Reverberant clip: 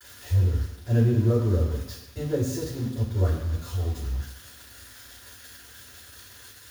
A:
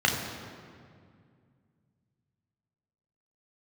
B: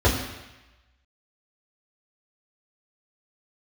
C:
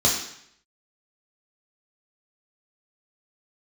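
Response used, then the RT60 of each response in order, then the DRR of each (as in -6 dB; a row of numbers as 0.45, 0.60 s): B; 2.2, 1.0, 0.70 s; -0.5, -7.5, -3.5 dB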